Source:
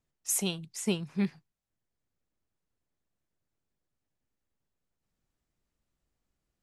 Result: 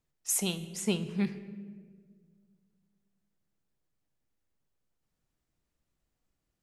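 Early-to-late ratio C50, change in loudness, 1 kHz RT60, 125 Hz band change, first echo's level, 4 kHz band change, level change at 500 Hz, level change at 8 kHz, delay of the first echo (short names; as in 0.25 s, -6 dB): 13.0 dB, 0.0 dB, 1.4 s, +0.5 dB, none, +0.5 dB, 0.0 dB, 0.0 dB, none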